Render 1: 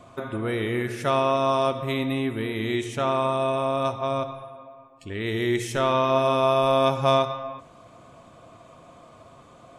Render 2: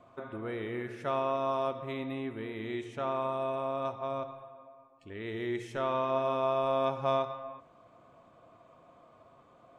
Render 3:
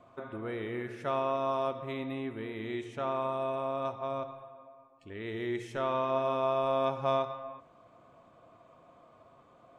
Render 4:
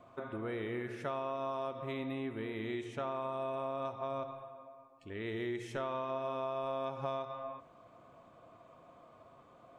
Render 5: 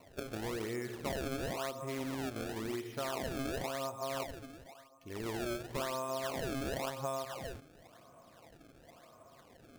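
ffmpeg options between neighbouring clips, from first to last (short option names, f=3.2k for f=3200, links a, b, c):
-af "lowpass=f=1.5k:p=1,lowshelf=f=260:g=-8,volume=-6.5dB"
-af anull
-af "acompressor=threshold=-34dB:ratio=6"
-af "acrusher=samples=26:mix=1:aa=0.000001:lfo=1:lforange=41.6:lforate=0.95"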